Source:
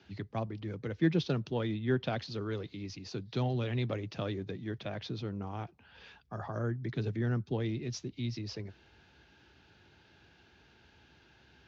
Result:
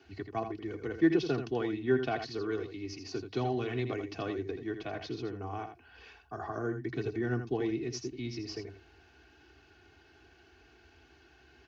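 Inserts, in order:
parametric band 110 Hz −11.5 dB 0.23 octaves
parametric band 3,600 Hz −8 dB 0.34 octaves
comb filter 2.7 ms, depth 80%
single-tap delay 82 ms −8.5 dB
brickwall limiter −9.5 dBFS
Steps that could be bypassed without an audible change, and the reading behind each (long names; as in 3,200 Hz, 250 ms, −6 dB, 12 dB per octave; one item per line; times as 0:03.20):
brickwall limiter −9.5 dBFS: peak of its input −15.5 dBFS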